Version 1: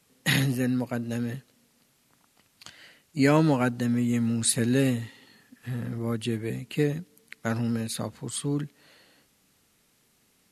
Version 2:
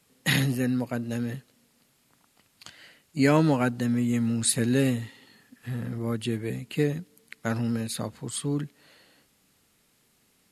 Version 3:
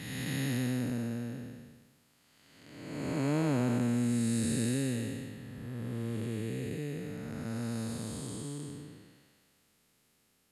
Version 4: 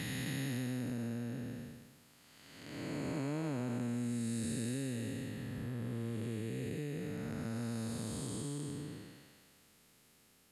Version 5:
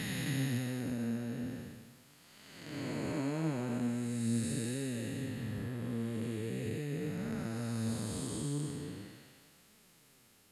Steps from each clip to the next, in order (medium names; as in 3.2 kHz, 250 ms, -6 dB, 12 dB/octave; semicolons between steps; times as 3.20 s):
band-stop 5.9 kHz, Q 22
spectral blur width 623 ms; dynamic bell 8 kHz, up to +5 dB, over -58 dBFS, Q 0.99; trim -3 dB
compression 3:1, threshold -43 dBFS, peak gain reduction 13 dB; trim +4.5 dB
flange 0.41 Hz, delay 4.5 ms, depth 9.3 ms, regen +51%; trim +6.5 dB